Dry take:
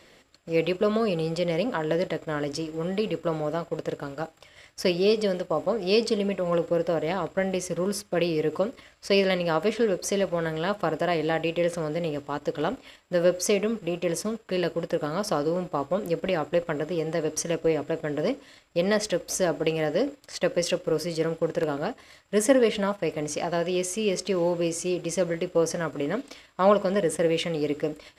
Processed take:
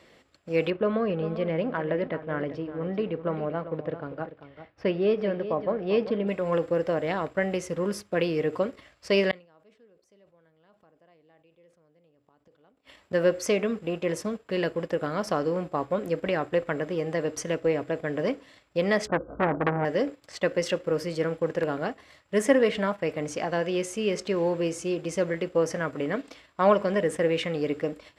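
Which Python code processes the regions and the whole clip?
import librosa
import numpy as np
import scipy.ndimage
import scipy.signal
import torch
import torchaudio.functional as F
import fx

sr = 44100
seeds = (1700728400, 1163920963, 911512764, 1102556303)

y = fx.chain(x, sr, fx.air_absorb(metres=370.0),
    fx.echo_single(ms=393, db=-12.0), at=(0.7, 6.28))
y = fx.chain(y, sr, fx.gate_flip(shuts_db=-28.0, range_db=-34),
    fx.sustainer(db_per_s=120.0), at=(9.31, 13.13))
y = fx.chain(y, sr, fx.brickwall_lowpass(high_hz=1600.0),
    fx.low_shelf(hz=410.0, db=11.0),
    fx.transformer_sat(knee_hz=1200.0), at=(19.07, 19.85))
y = fx.dynamic_eq(y, sr, hz=1800.0, q=1.5, threshold_db=-43.0, ratio=4.0, max_db=5)
y = scipy.signal.sosfilt(scipy.signal.butter(2, 48.0, 'highpass', fs=sr, output='sos'), y)
y = fx.high_shelf(y, sr, hz=4000.0, db=-7.5)
y = F.gain(torch.from_numpy(y), -1.0).numpy()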